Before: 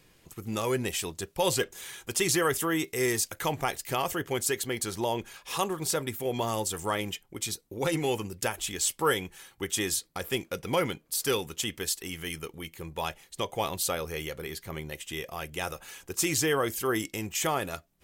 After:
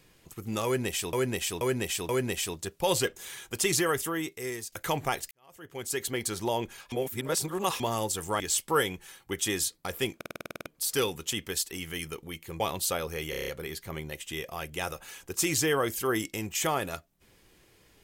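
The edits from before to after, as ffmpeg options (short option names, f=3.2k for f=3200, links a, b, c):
-filter_complex "[0:a]asplit=26[a][b][c][d][e][f][g][h][i][j][k][l][m][n][o][p][q][r][s][t][u][v][w][x][y][z];[a]atrim=end=1.132[aa];[b]atrim=start=0.648:end=1.132[ab];[c]atrim=start=0.648:end=1.132[ac];[d]atrim=start=0.648:end=3.28,asetpts=PTS-STARTPTS,afade=t=out:st=1.612:d=1.02:silence=0.211349[ad];[e]atrim=start=3.28:end=3.87,asetpts=PTS-STARTPTS,afade=t=in:d=0.004:c=hsin:silence=0.211349,afade=t=out:st=0.586:d=0.004:c=hsin[ae];[f]atrim=start=3.87:end=5.482,asetpts=PTS-STARTPTS,afade=t=in:d=0.77:c=qua[af];[g]atrim=start=5.478:end=6.362,asetpts=PTS-STARTPTS,areverse[ag];[h]atrim=start=6.358:end=6.962[ah];[i]atrim=start=8.708:end=10.522[ai];[j]atrim=start=10.468:end=10.522[aj];[k]atrim=start=10.468:end=10.522[ak];[l]atrim=start=10.468:end=10.522[al];[m]atrim=start=10.468:end=10.522[am];[n]atrim=start=10.468:end=10.522[an];[o]atrim=start=10.468:end=10.522[ao];[p]atrim=start=10.468:end=10.522[ap];[q]atrim=start=10.468:end=10.522[aq];[r]atrim=start=10.468:end=10.522[ar];[s]atrim=start=10.968:end=12.912[as];[t]atrim=start=13.578:end=14.312[at];[u]atrim=start=14.278:end=14.312[au];[v]atrim=start=14.278:end=14.312[av];[w]atrim=start=14.278:end=14.312[aw];[x]atrim=start=14.278:end=14.312[ax];[y]atrim=start=14.278:end=14.312[ay];[z]atrim=start=14.278[az];[aa][ab]acrossfade=d=0.004:c1=hsin:c2=hsin[ba];[ba][ac]acrossfade=d=0.004:c1=hsin:c2=hsin[bb];[ad][ae][af]concat=n=3:v=0:a=1[bc];[bb][bc]acrossfade=d=0.004:c1=hsin:c2=hsin[bd];[bd][ag]acrossfade=d=0.004:c1=hsin:c2=hsin[be];[be][ah]acrossfade=d=0.004:c1=hsin:c2=hsin[bf];[bf][ai]acrossfade=d=0.004:c1=hsin:c2=hsin[bg];[bg][aj]acrossfade=d=0.004:c1=hsin:c2=hsin[bh];[bh][ak]acrossfade=d=0.004:c1=hsin:c2=hsin[bi];[bi][al]acrossfade=d=0.004:c1=hsin:c2=hsin[bj];[bj][am]acrossfade=d=0.004:c1=hsin:c2=hsin[bk];[bk][an]acrossfade=d=0.004:c1=hsin:c2=hsin[bl];[bl][ao]acrossfade=d=0.004:c1=hsin:c2=hsin[bm];[bm][ap]acrossfade=d=0.004:c1=hsin:c2=hsin[bn];[bn][aq]acrossfade=d=0.004:c1=hsin:c2=hsin[bo];[bo][ar]acrossfade=d=0.004:c1=hsin:c2=hsin[bp];[bp][as]acrossfade=d=0.004:c1=hsin:c2=hsin[bq];[bq][at]acrossfade=d=0.004:c1=hsin:c2=hsin[br];[br][au]acrossfade=d=0.004:c1=hsin:c2=hsin[bs];[bs][av]acrossfade=d=0.004:c1=hsin:c2=hsin[bt];[bt][aw]acrossfade=d=0.004:c1=hsin:c2=hsin[bu];[bu][ax]acrossfade=d=0.004:c1=hsin:c2=hsin[bv];[bv][ay]acrossfade=d=0.004:c1=hsin:c2=hsin[bw];[bw][az]acrossfade=d=0.004:c1=hsin:c2=hsin"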